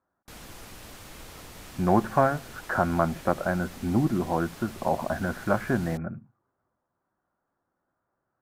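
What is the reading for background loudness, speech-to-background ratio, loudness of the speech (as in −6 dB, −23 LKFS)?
−44.5 LKFS, 17.5 dB, −27.0 LKFS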